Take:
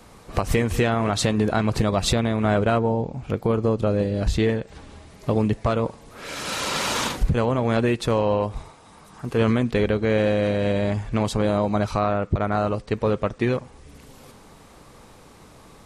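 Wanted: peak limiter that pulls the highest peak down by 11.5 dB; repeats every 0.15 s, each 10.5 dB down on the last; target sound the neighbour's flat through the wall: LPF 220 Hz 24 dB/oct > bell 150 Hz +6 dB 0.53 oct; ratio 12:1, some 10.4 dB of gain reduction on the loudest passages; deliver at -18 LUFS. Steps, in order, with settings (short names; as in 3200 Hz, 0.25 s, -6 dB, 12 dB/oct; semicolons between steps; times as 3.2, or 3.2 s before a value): compressor 12:1, threshold -25 dBFS; limiter -23.5 dBFS; LPF 220 Hz 24 dB/oct; bell 150 Hz +6 dB 0.53 oct; feedback echo 0.15 s, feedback 30%, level -10.5 dB; gain +18 dB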